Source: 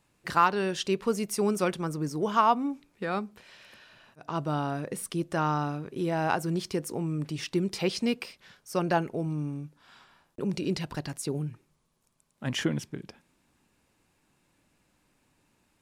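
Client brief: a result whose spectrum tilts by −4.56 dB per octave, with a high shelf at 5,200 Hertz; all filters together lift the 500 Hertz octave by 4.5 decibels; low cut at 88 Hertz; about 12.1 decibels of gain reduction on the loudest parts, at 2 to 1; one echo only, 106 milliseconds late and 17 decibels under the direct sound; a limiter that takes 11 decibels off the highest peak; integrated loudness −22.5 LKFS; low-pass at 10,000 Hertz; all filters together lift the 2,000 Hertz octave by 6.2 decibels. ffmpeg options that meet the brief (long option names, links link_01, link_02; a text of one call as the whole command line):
ffmpeg -i in.wav -af "highpass=88,lowpass=10000,equalizer=frequency=500:width_type=o:gain=5.5,equalizer=frequency=2000:width_type=o:gain=7.5,highshelf=frequency=5200:gain=6,acompressor=threshold=-36dB:ratio=2,alimiter=level_in=1.5dB:limit=-24dB:level=0:latency=1,volume=-1.5dB,aecho=1:1:106:0.141,volume=15dB" out.wav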